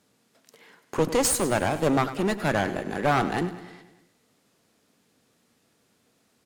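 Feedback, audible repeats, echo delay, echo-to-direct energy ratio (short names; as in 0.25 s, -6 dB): 58%, 5, 0.101 s, -12.0 dB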